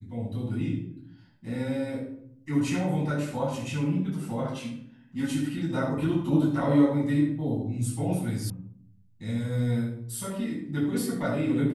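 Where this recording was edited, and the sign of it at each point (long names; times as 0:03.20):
0:08.50: cut off before it has died away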